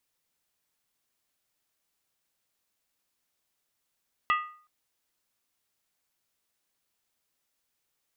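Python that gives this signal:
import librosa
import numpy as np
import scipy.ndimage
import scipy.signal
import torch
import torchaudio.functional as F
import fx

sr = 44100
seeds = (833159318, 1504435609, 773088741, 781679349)

y = fx.strike_skin(sr, length_s=0.37, level_db=-20.0, hz=1230.0, decay_s=0.48, tilt_db=5, modes=5)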